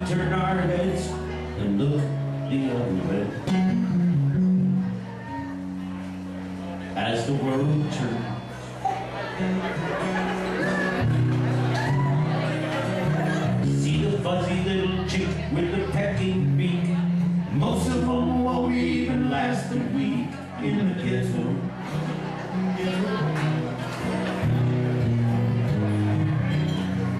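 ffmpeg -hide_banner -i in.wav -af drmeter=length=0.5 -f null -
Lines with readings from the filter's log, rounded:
Channel 1: DR: 6.1
Overall DR: 6.1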